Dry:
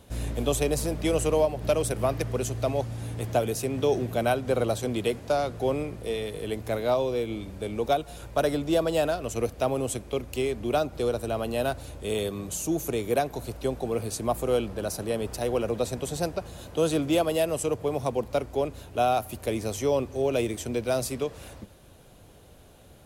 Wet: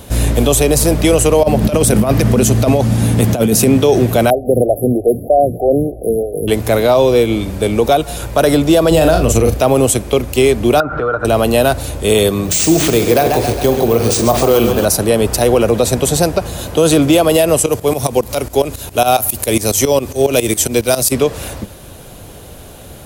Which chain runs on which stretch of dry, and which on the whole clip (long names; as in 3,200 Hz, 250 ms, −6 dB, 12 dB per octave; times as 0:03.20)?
0:01.43–0:03.78: parametric band 210 Hz +13 dB 0.47 octaves + compressor whose output falls as the input rises −26 dBFS, ratio −0.5
0:04.30–0:06.48: linear-phase brick-wall band-stop 780–10,000 Hz + phaser with staggered stages 3.2 Hz
0:08.91–0:09.58: low-shelf EQ 260 Hz +9 dB + double-tracking delay 38 ms −7 dB
0:10.80–0:11.25: comb filter 6.7 ms, depth 51% + downward compressor 5 to 1, threshold −34 dBFS + low-pass with resonance 1,400 Hz, resonance Q 13
0:12.45–0:14.85: bad sample-rate conversion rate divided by 3×, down none, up hold + flutter between parallel walls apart 7.4 metres, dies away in 0.26 s + feedback echo with a swinging delay time 135 ms, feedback 61%, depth 103 cents, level −10 dB
0:17.66–0:21.12: high-shelf EQ 4,000 Hz +10.5 dB + shaped tremolo saw up 7.3 Hz, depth 85%
whole clip: high-shelf EQ 8,900 Hz +7 dB; boost into a limiter +18.5 dB; level −1 dB